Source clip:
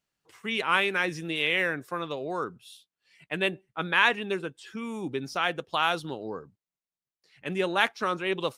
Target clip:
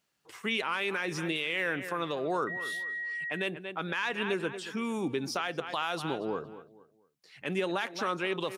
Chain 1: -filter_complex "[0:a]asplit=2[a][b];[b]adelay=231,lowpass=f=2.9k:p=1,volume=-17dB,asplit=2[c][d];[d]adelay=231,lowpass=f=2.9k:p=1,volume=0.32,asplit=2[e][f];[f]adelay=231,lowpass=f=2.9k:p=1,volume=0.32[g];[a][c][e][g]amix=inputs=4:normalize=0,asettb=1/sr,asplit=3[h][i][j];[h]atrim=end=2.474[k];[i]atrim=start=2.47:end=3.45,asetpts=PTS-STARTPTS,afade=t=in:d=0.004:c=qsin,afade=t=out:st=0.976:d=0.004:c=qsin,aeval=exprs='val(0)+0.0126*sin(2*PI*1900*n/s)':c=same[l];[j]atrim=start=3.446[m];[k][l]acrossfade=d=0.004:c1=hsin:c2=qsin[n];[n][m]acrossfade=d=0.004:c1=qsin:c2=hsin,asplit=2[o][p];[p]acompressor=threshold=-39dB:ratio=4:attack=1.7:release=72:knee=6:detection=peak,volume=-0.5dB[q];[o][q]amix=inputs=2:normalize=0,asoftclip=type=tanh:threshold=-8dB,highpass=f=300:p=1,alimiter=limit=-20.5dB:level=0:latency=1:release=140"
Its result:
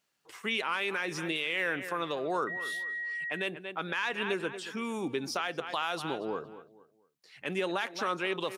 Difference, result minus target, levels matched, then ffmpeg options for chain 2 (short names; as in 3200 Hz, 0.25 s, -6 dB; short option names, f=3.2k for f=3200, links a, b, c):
125 Hz band -3.5 dB
-filter_complex "[0:a]asplit=2[a][b];[b]adelay=231,lowpass=f=2.9k:p=1,volume=-17dB,asplit=2[c][d];[d]adelay=231,lowpass=f=2.9k:p=1,volume=0.32,asplit=2[e][f];[f]adelay=231,lowpass=f=2.9k:p=1,volume=0.32[g];[a][c][e][g]amix=inputs=4:normalize=0,asettb=1/sr,asplit=3[h][i][j];[h]atrim=end=2.474[k];[i]atrim=start=2.47:end=3.45,asetpts=PTS-STARTPTS,afade=t=in:d=0.004:c=qsin,afade=t=out:st=0.976:d=0.004:c=qsin,aeval=exprs='val(0)+0.0126*sin(2*PI*1900*n/s)':c=same[l];[j]atrim=start=3.446[m];[k][l]acrossfade=d=0.004:c1=hsin:c2=qsin[n];[n][m]acrossfade=d=0.004:c1=qsin:c2=hsin,asplit=2[o][p];[p]acompressor=threshold=-39dB:ratio=4:attack=1.7:release=72:knee=6:detection=peak,volume=-0.5dB[q];[o][q]amix=inputs=2:normalize=0,asoftclip=type=tanh:threshold=-8dB,highpass=f=140:p=1,alimiter=limit=-20.5dB:level=0:latency=1:release=140"